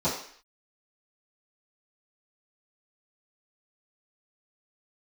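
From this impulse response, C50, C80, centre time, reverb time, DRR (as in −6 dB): 5.0 dB, 9.0 dB, 36 ms, 0.55 s, −14.5 dB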